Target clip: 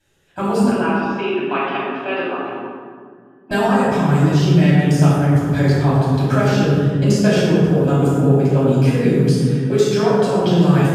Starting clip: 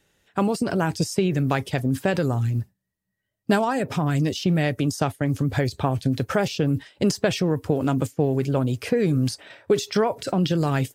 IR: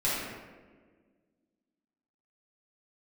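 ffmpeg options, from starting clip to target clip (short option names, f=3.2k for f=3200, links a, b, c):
-filter_complex "[0:a]asettb=1/sr,asplit=3[a][b][c];[a]atrim=end=0.704[d];[b]atrim=start=0.7:end=3.51,asetpts=PTS-STARTPTS,afade=t=in:d=0.004:c=qsin,afade=t=out:st=2.806:d=0.004:c=qsin,highpass=f=340:w=0.5412,highpass=f=340:w=1.3066,equalizer=f=500:t=q:w=4:g=-10,equalizer=f=1.1k:t=q:w=4:g=7,equalizer=f=1.8k:t=q:w=4:g=-4,equalizer=f=2.7k:t=q:w=4:g=8,lowpass=f=3.2k:w=0.5412,lowpass=f=3.2k:w=1.3066[e];[c]atrim=start=3.506[f];[d][e]acrossfade=d=0.004:c1=hsin:c2=qsin[g];[g][f]acrossfade=d=0.004:c1=qsin:c2=hsin[h];[1:a]atrim=start_sample=2205,asetrate=28224,aresample=44100[i];[h][i]afir=irnorm=-1:irlink=0,volume=-7.5dB"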